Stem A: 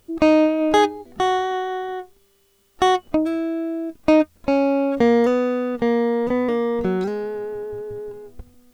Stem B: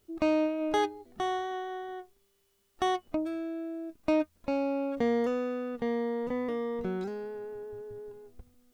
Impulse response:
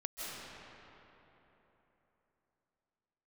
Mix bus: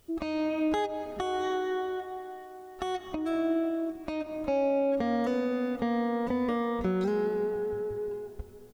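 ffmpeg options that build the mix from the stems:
-filter_complex "[0:a]acompressor=threshold=-18dB:ratio=6,volume=-5.5dB,asplit=2[link_01][link_02];[link_02]volume=-12.5dB[link_03];[1:a]aecho=1:1:1.6:0.86,volume=-1,adelay=6.5,volume=-1.5dB[link_04];[2:a]atrim=start_sample=2205[link_05];[link_03][link_05]afir=irnorm=-1:irlink=0[link_06];[link_01][link_04][link_06]amix=inputs=3:normalize=0,alimiter=limit=-19.5dB:level=0:latency=1:release=245"

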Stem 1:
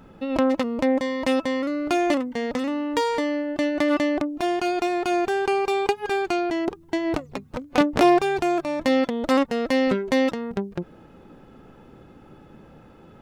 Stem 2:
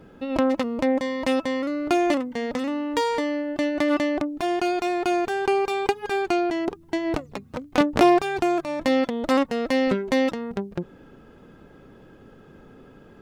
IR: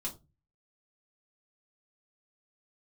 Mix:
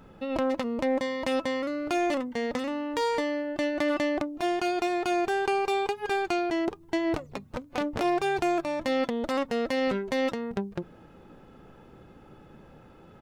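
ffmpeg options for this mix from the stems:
-filter_complex "[0:a]equalizer=frequency=260:width_type=o:width=0.85:gain=-3,alimiter=limit=-15dB:level=0:latency=1:release=49,volume=-2.5dB[link_01];[1:a]alimiter=limit=-15dB:level=0:latency=1:release=19,asoftclip=type=hard:threshold=-22.5dB,adelay=9,volume=-18.5dB,asplit=2[link_02][link_03];[link_03]volume=-8dB[link_04];[2:a]atrim=start_sample=2205[link_05];[link_04][link_05]afir=irnorm=-1:irlink=0[link_06];[link_01][link_02][link_06]amix=inputs=3:normalize=0"

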